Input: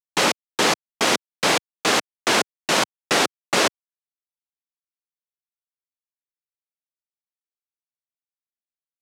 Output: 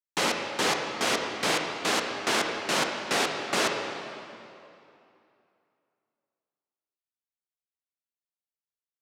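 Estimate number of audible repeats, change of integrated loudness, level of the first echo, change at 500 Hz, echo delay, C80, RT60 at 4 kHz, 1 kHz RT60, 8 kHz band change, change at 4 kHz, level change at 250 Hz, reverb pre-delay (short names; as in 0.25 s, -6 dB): none, -6.5 dB, none, -5.5 dB, none, 4.5 dB, 2.1 s, 2.7 s, -7.0 dB, -6.5 dB, -6.0 dB, 25 ms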